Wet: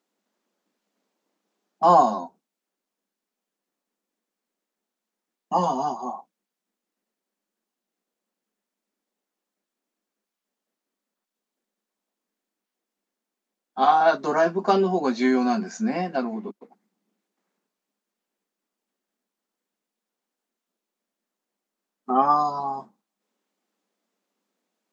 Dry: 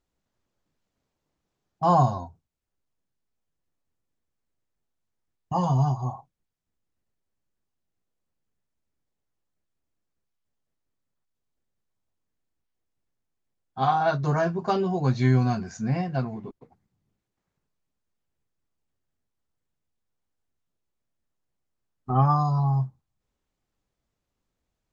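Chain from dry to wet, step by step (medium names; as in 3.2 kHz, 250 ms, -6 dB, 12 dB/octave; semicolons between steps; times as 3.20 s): elliptic high-pass 200 Hz, stop band 40 dB; trim +5.5 dB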